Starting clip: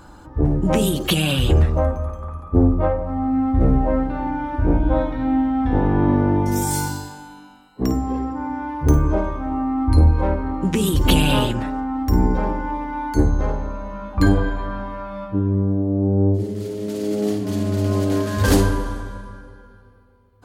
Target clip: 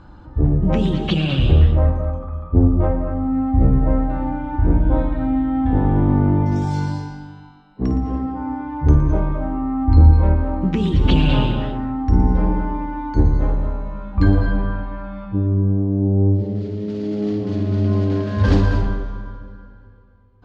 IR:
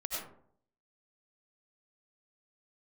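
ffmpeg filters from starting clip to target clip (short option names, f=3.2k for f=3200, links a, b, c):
-filter_complex "[0:a]lowpass=f=5.1k:w=0.5412,lowpass=f=5.1k:w=1.3066,bass=f=250:g=7,treble=f=4k:g=-4,asplit=2[a][b];[1:a]atrim=start_sample=2205,adelay=115[c];[b][c]afir=irnorm=-1:irlink=0,volume=-8.5dB[d];[a][d]amix=inputs=2:normalize=0,volume=-4dB"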